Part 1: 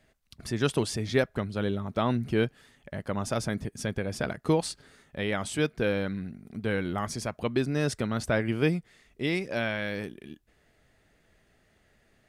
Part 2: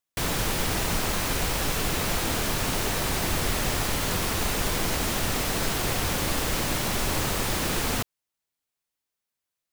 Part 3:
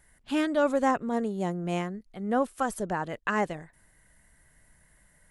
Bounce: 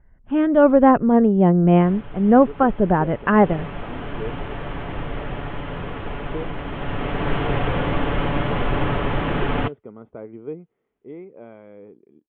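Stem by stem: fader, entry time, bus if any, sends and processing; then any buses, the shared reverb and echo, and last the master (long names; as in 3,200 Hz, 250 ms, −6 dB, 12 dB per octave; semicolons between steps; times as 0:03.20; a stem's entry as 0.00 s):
−9.5 dB, 1.85 s, no send, resonant band-pass 480 Hz, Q 3.6; comb filter 0.9 ms, depth 62%
0:03.29 −21 dB → 0:03.50 −13 dB → 0:06.62 −13 dB → 0:07.33 −5 dB, 1.65 s, no send, comb filter 7 ms, depth 41%; noise that follows the level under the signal 14 dB
+2.5 dB, 0.00 s, no send, low-pass that shuts in the quiet parts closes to 2,000 Hz; spectral tilt −2 dB per octave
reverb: not used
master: elliptic low-pass filter 3,200 Hz, stop band 40 dB; high-shelf EQ 2,000 Hz −11.5 dB; automatic gain control gain up to 12.5 dB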